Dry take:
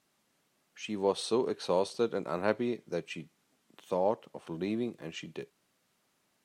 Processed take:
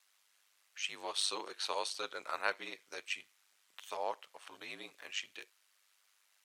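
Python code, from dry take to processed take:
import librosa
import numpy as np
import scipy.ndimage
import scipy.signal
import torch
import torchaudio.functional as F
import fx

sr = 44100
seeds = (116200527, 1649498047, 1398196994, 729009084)

y = scipy.signal.sosfilt(scipy.signal.butter(2, 1400.0, 'highpass', fs=sr, output='sos'), x)
y = y * np.sin(2.0 * np.pi * 50.0 * np.arange(len(y)) / sr)
y = y * librosa.db_to_amplitude(7.0)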